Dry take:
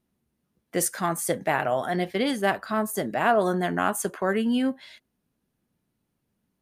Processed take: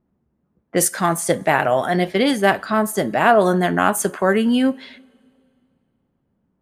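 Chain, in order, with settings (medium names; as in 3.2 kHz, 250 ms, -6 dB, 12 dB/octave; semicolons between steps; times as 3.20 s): level-controlled noise filter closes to 1.2 kHz, open at -23 dBFS; two-slope reverb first 0.33 s, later 2.4 s, from -18 dB, DRR 17 dB; trim +7.5 dB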